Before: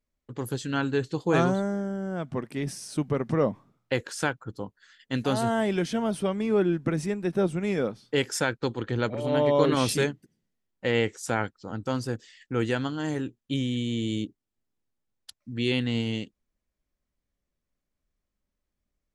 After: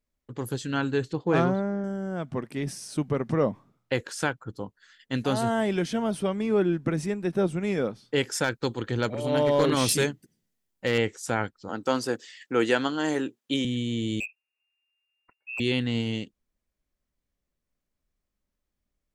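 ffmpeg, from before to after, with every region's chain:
ffmpeg -i in.wav -filter_complex "[0:a]asettb=1/sr,asplit=3[link_01][link_02][link_03];[link_01]atrim=end=1.134[link_04];[link_02]atrim=start=1.13:end=1.84,asetpts=PTS-STARTPTS,afade=type=in:duration=0.004:curve=qsin,afade=type=out:start_time=0.706:duration=0.004:curve=qsin,highpass=47,adynamicsmooth=sensitivity=1.5:basefreq=2700[link_05];[link_03]atrim=start=1.836[link_06];[link_04][link_05]acrossfade=duration=0.004:curve1=hsin:curve2=qsin[link_07];[link_07][link_06]acrossfade=duration=0.004:curve1=qsin:curve2=hsin,asettb=1/sr,asplit=3[link_08][link_09][link_10];[link_08]atrim=end=8.444[link_11];[link_09]atrim=start=8.44:end=10.98,asetpts=PTS-STARTPTS,afade=type=in:duration=0.004:curve=qsin,afade=type=out:start_time=2.536:duration=0.004:curve=qsin,highshelf=frequency=5000:gain=8.5,asoftclip=type=hard:threshold=-15.5dB[link_12];[link_10]atrim=start=10.976[link_13];[link_11][link_12]acrossfade=duration=0.004:curve1=hsin:curve2=qsin[link_14];[link_14][link_13]acrossfade=duration=0.004:curve1=qsin:curve2=hsin,asettb=1/sr,asplit=3[link_15][link_16][link_17];[link_15]atrim=end=11.694[link_18];[link_16]atrim=start=11.69:end=13.65,asetpts=PTS-STARTPTS,afade=type=in:duration=0.004:curve=qsin,afade=type=out:start_time=1.956:duration=0.004:curve=qsin,highpass=300,acontrast=47[link_19];[link_17]atrim=start=13.646[link_20];[link_18][link_19]acrossfade=duration=0.004:curve1=hsin:curve2=qsin[link_21];[link_21][link_20]acrossfade=duration=0.004:curve1=qsin:curve2=hsin,asettb=1/sr,asplit=3[link_22][link_23][link_24];[link_22]atrim=end=14.204[link_25];[link_23]atrim=start=14.2:end=15.6,asetpts=PTS-STARTPTS,afade=type=in:duration=0.004:curve=qsin,afade=type=out:start_time=1.396:duration=0.004:curve=qsin,lowpass=frequency=2400:width_type=q:width=0.5098,lowpass=frequency=2400:width_type=q:width=0.6013,lowpass=frequency=2400:width_type=q:width=0.9,lowpass=frequency=2400:width_type=q:width=2.563,afreqshift=-2800,asoftclip=type=hard:threshold=-27.5dB[link_26];[link_24]atrim=start=15.596[link_27];[link_25][link_26]acrossfade=duration=0.004:curve1=hsin:curve2=qsin[link_28];[link_28][link_27]acrossfade=duration=0.004:curve1=qsin:curve2=hsin" out.wav

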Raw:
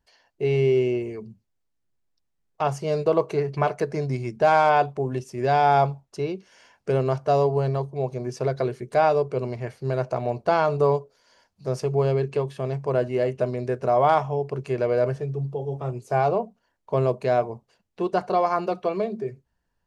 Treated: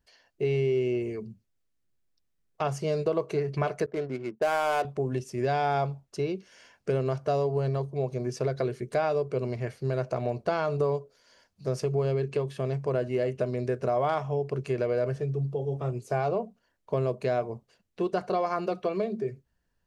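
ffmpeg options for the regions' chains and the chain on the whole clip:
ffmpeg -i in.wav -filter_complex "[0:a]asettb=1/sr,asplit=3[link_01][link_02][link_03];[link_01]atrim=end=3.864[link_04];[link_02]atrim=start=3.86:end=4.85,asetpts=PTS-STARTPTS,afade=type=in:duration=0.004:curve=qsin,afade=type=out:start_time=0.986:duration=0.004:curve=qsin,highpass=290,agate=range=-33dB:threshold=-40dB:ratio=3:release=100:detection=peak,adynamicsmooth=sensitivity=6.5:basefreq=620[link_05];[link_03]atrim=start=4.846[link_06];[link_04][link_05]acrossfade=duration=0.004:curve1=hsin:curve2=qsin[link_07];[link_07][link_06]acrossfade=duration=0.004:curve1=qsin:curve2=hsin,equalizer=frequency=880:width=2.5:gain=-6,acompressor=threshold=-25dB:ratio=2.5" out.wav

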